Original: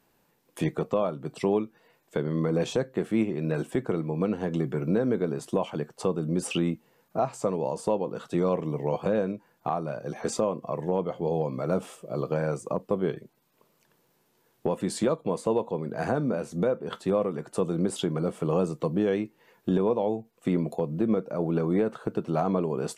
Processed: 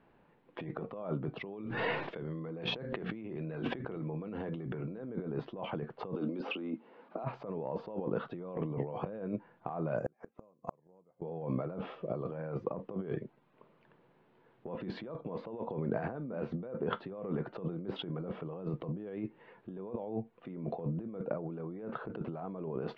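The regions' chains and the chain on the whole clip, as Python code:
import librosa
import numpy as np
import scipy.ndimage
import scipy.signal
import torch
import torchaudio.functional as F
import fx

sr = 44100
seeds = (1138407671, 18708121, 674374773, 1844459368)

y = fx.chain(x, sr, fx.high_shelf(hz=2800.0, db=9.0),
    fx.hum_notches(base_hz=60, count=4),
    fx.sustainer(db_per_s=36.0), at=(1.45, 5.1))
y = fx.chain(y, sr, fx.cheby1_bandpass(low_hz=240.0, high_hz=5500.0, order=3),
    fx.peak_eq(hz=1800.0, db=-6.0, octaves=0.22),
    fx.band_squash(depth_pct=70), at=(6.14, 7.24))
y = fx.chain(y, sr, fx.lowpass(hz=2600.0, slope=24),
    fx.gate_flip(shuts_db=-24.0, range_db=-40),
    fx.resample_bad(factor=6, down='none', up='zero_stuff'), at=(9.98, 11.22))
y = scipy.signal.sosfilt(scipy.signal.bessel(8, 2000.0, 'lowpass', norm='mag', fs=sr, output='sos'), y)
y = fx.over_compress(y, sr, threshold_db=-35.0, ratio=-1.0)
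y = y * 10.0 ** (-3.5 / 20.0)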